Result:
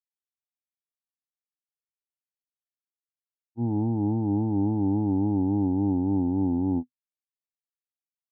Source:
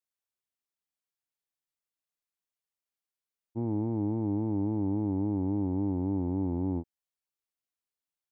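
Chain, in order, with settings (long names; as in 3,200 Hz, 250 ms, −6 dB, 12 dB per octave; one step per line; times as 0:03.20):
low-pass filter 1,100 Hz 24 dB per octave
downward expander −22 dBFS
thirty-one-band graphic EQ 125 Hz +11 dB, 250 Hz +11 dB, 800 Hz +9 dB
level +8.5 dB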